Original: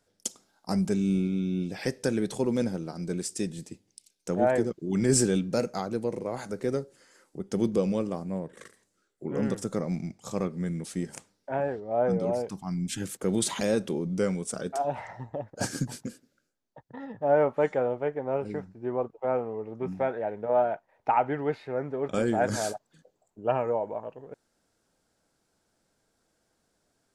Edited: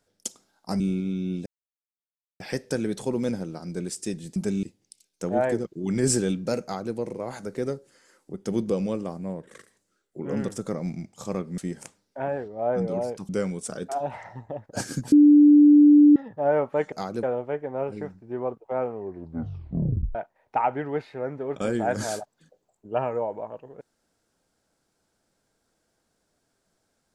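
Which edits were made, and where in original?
0.80–1.07 s: move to 3.69 s
1.73 s: insert silence 0.94 s
5.69–6.00 s: copy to 17.76 s
10.64–10.90 s: delete
12.61–14.13 s: delete
15.96–17.00 s: bleep 294 Hz -10 dBFS
19.47 s: tape stop 1.21 s

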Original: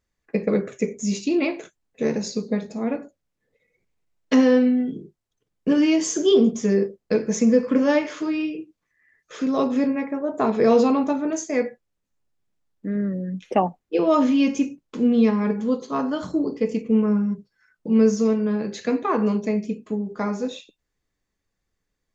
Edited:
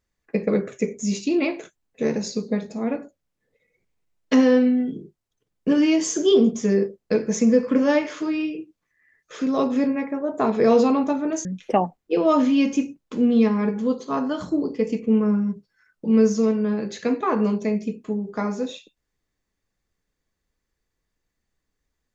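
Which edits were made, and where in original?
11.45–13.27 s: delete

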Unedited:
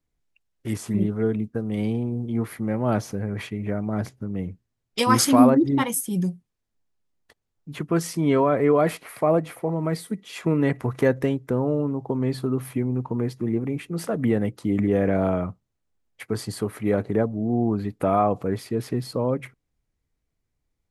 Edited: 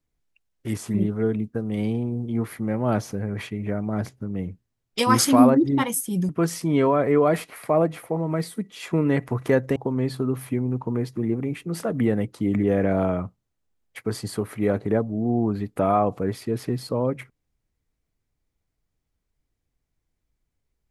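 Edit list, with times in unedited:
6.29–7.82 s: delete
11.29–12.00 s: delete

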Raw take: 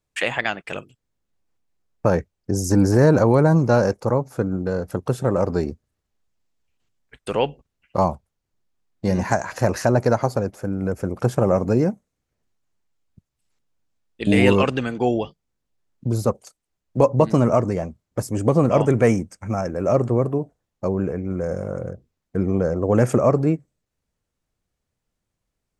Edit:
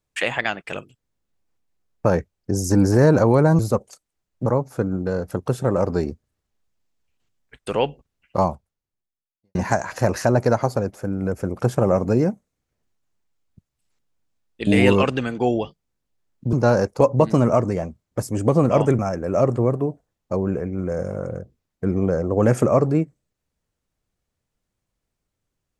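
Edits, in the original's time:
3.59–4.06 s: swap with 16.13–17.00 s
8.00–9.15 s: fade out quadratic
18.99–19.51 s: delete

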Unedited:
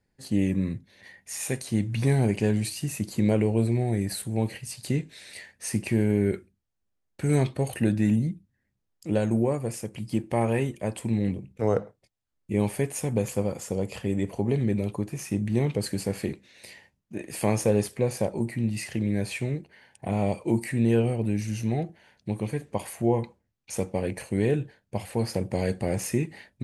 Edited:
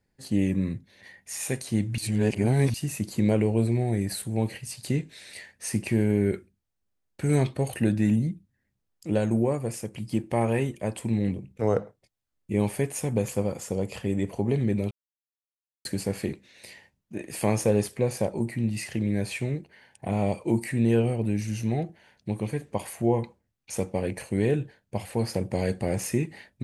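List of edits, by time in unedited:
1.98–2.74 s: reverse
14.91–15.85 s: mute

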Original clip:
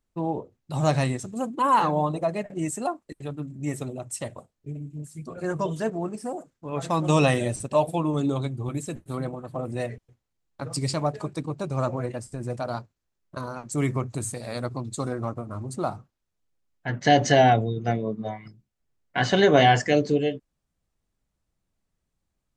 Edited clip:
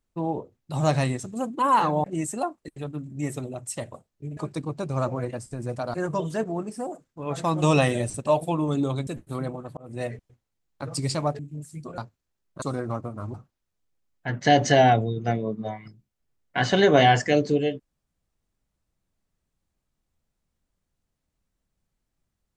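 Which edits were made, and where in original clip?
2.04–2.48 s: delete
4.81–5.40 s: swap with 11.18–12.75 s
8.53–8.86 s: delete
9.56–9.85 s: fade in
13.39–14.95 s: delete
15.67–15.94 s: delete

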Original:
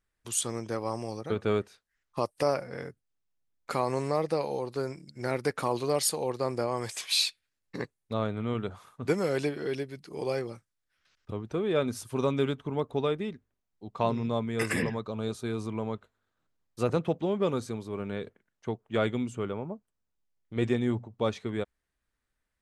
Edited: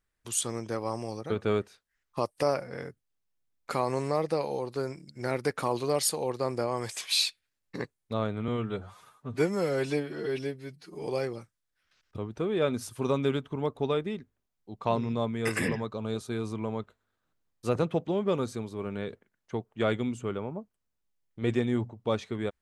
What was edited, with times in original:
8.48–10.20 s: stretch 1.5×

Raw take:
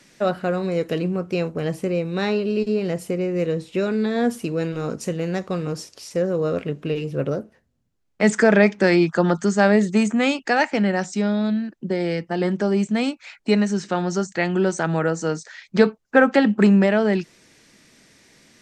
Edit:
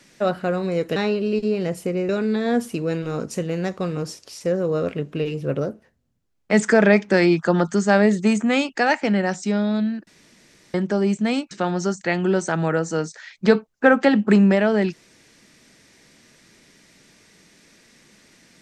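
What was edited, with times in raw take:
0.96–2.20 s: delete
3.33–3.79 s: delete
11.77–12.44 s: room tone
13.21–13.82 s: delete

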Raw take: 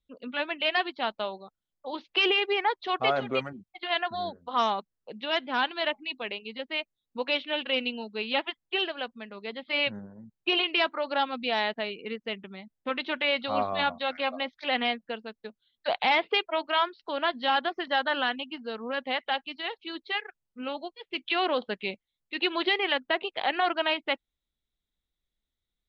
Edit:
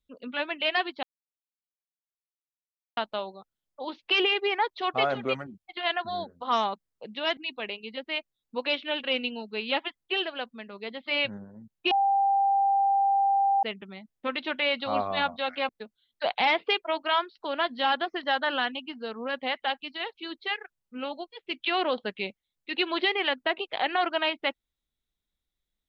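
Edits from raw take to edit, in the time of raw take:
1.03 s: insert silence 1.94 s
5.43–5.99 s: delete
10.53–12.25 s: bleep 791 Hz -20 dBFS
14.31–15.33 s: delete

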